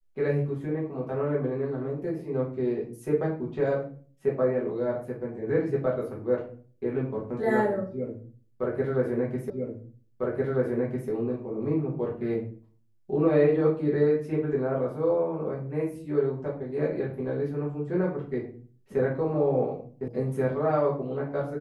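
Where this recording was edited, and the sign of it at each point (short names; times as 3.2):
9.5 repeat of the last 1.6 s
20.08 sound cut off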